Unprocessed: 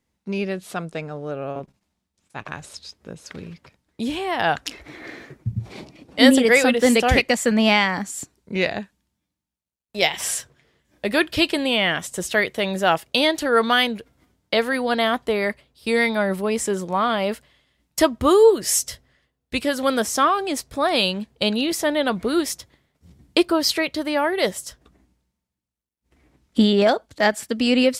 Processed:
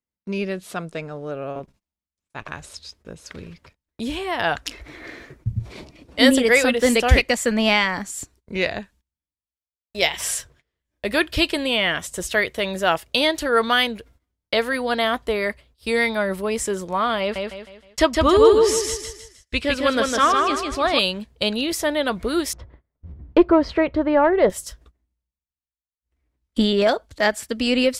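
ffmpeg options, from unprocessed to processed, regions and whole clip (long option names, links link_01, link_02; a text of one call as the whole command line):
ffmpeg -i in.wav -filter_complex "[0:a]asettb=1/sr,asplit=3[link_01][link_02][link_03];[link_01]atrim=end=17.204[link_04];[link_02]atrim=start=17.2:end=20.99,asetpts=PTS-STARTPTS,afade=type=in:duration=0.004:curve=qsin,afade=type=out:start_time=3.786:duration=0.004:curve=qsin,lowpass=3200,aemphasis=mode=production:type=75kf,aecho=1:1:156|312|468|624|780:0.668|0.254|0.0965|0.0367|0.0139,atrim=end_sample=167139[link_05];[link_03]atrim=start=20.986[link_06];[link_04][link_05]acrossfade=duration=0.004:curve1=hsin:curve2=qsin[link_07];[link_07][link_06]acrossfade=duration=0.004:curve1=qsin:curve2=hsin,asettb=1/sr,asplit=3[link_08][link_09][link_10];[link_08]atrim=end=22.534[link_11];[link_09]atrim=start=22.53:end=24.5,asetpts=PTS-STARTPTS,afade=type=in:duration=0.004:curve=qsin,afade=type=out:start_time=1.966:duration=0.004:curve=qsin,lowpass=1200,acontrast=86[link_12];[link_10]atrim=start=24.496[link_13];[link_11][link_12]acrossfade=duration=0.004:curve1=hsin:curve2=qsin[link_14];[link_14][link_13]acrossfade=duration=0.004:curve1=qsin:curve2=hsin,agate=range=-19dB:threshold=-51dB:ratio=16:detection=peak,bandreject=frequency=790:width=12,asubboost=boost=5.5:cutoff=66" out.wav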